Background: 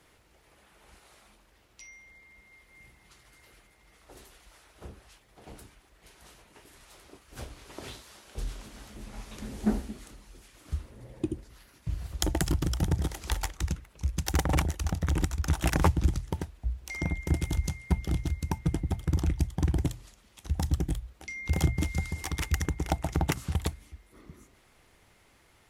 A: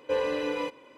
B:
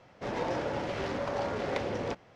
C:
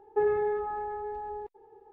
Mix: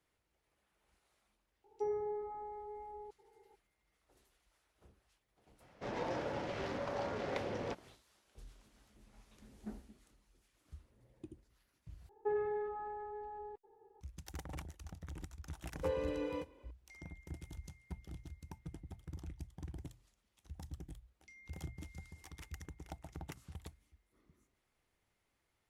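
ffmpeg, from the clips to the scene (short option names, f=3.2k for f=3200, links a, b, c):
-filter_complex "[3:a]asplit=2[a][b];[0:a]volume=-20dB[c];[a]lowpass=f=1.1k:w=0.5412,lowpass=f=1.1k:w=1.3066[d];[1:a]equalizer=f=290:t=o:w=2.6:g=8.5[e];[c]asplit=2[f][g];[f]atrim=end=12.094[h];[b]atrim=end=1.92,asetpts=PTS-STARTPTS,volume=-9.5dB[i];[g]atrim=start=14.006[j];[d]atrim=end=1.92,asetpts=PTS-STARTPTS,volume=-11dB,afade=t=in:d=0.004:c=hsin,afade=t=out:st=1.916:d=0.004:c=hsin,adelay=1640[k];[2:a]atrim=end=2.35,asetpts=PTS-STARTPTS,volume=-6.5dB,afade=t=in:d=0.004:c=hsin,afade=t=out:st=2.346:d=0.004:c=hsin,adelay=5600[l];[e]atrim=end=0.97,asetpts=PTS-STARTPTS,volume=-15.5dB,afade=t=in:d=0.004:c=hsin,afade=t=out:st=0.966:d=0.004:c=hsin,adelay=15740[m];[h][i]acrossfade=d=0.004:c1=hsin:c2=hsin[n];[n][j]acrossfade=d=0.004:c1=hsin:c2=hsin[o];[o][k][l][m]amix=inputs=4:normalize=0"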